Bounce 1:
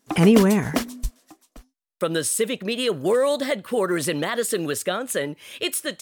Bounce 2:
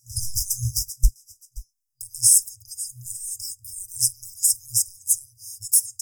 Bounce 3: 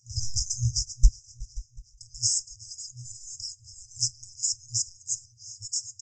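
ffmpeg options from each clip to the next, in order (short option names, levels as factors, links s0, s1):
-af "acontrast=79,afftfilt=real='re*(1-between(b*sr/4096,120,4900))':imag='im*(1-between(b*sr/4096,120,4900))':win_size=4096:overlap=0.75,volume=1.5"
-af "aresample=16000,aresample=44100,aecho=1:1:368|736|1104|1472:0.0794|0.0413|0.0215|0.0112"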